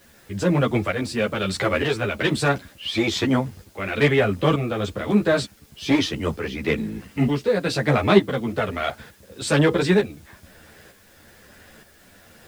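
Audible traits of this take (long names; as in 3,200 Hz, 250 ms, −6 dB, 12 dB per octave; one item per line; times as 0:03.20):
tremolo saw up 1.1 Hz, depth 65%
a quantiser's noise floor 10 bits, dither triangular
a shimmering, thickened sound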